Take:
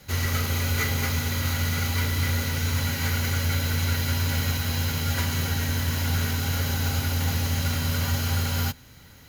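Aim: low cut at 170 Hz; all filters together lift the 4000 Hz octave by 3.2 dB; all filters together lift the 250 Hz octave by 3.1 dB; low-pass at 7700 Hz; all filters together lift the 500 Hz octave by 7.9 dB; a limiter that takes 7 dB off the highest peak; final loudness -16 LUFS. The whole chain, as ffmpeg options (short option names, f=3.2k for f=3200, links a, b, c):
-af "highpass=170,lowpass=7.7k,equalizer=f=250:t=o:g=3,equalizer=f=500:t=o:g=8.5,equalizer=f=4k:t=o:g=4,volume=12dB,alimiter=limit=-7dB:level=0:latency=1"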